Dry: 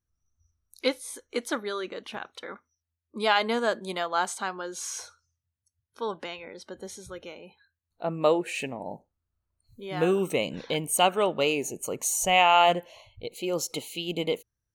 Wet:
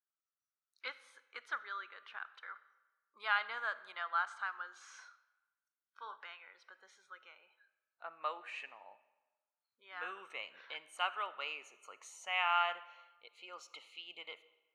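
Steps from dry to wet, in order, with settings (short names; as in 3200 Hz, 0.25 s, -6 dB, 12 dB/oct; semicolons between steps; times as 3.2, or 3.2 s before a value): ladder band-pass 1600 Hz, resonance 50%; 4.84–6.16 flutter echo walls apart 6.5 m, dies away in 0.22 s; reverb RT60 1.2 s, pre-delay 10 ms, DRR 15.5 dB; gain +1.5 dB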